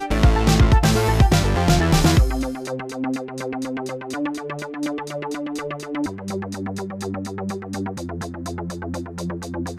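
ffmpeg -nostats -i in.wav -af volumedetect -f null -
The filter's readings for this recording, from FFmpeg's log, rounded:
mean_volume: -21.1 dB
max_volume: -6.5 dB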